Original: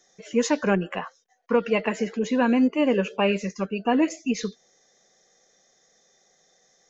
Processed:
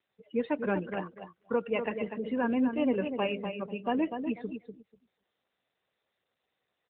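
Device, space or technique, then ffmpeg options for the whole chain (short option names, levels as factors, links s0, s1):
mobile call with aggressive noise cancelling: -filter_complex "[0:a]asettb=1/sr,asplit=3[s0][s1][s2];[s0]atrim=end=3.044[s3];[s1]atrim=start=3.04:end=3.66,asetpts=PTS-STARTPTS,afade=t=in:d=0.004:c=qsin,afade=t=out:st=0.616:d=0.004:c=qsin,bandreject=f=50:t=h:w=6,bandreject=f=100:t=h:w=6,bandreject=f=150:t=h:w=6,bandreject=f=200:t=h:w=6,bandreject=f=250:t=h:w=6,bandreject=f=300:t=h:w=6,bandreject=f=350:t=h:w=6,bandreject=f=400:t=h:w=6,bandreject=f=450:t=h:w=6[s4];[s2]atrim=start=3.656[s5];[s3][s4]acrossfade=d=0.004:c1=hsin:c2=qsin[s6];[s6][s5]acrossfade=d=0.004:c1=qsin:c2=hsin,highpass=f=150:p=1,lowpass=f=5400:w=0.5412,lowpass=f=5400:w=1.3066,aecho=1:1:245|490|735:0.447|0.116|0.0302,afftdn=nr=21:nf=-34,volume=0.447" -ar 8000 -c:a libopencore_amrnb -b:a 12200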